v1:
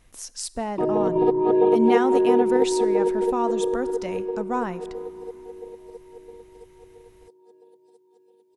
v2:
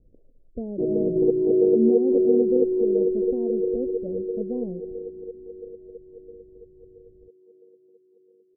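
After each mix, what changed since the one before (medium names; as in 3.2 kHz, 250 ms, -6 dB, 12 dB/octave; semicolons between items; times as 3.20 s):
master: add steep low-pass 550 Hz 48 dB/octave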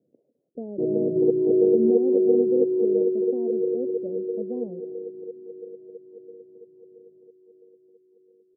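speech: add Bessel high-pass 250 Hz, order 8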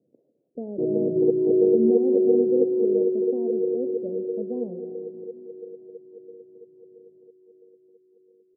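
speech: send +10.0 dB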